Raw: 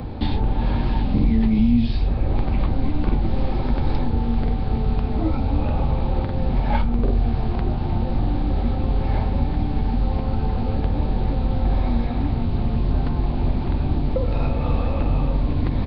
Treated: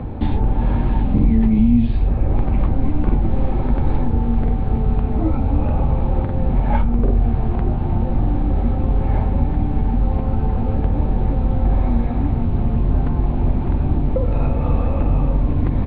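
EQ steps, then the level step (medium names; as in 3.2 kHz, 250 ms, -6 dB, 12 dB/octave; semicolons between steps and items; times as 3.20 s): distance through air 490 m; +3.5 dB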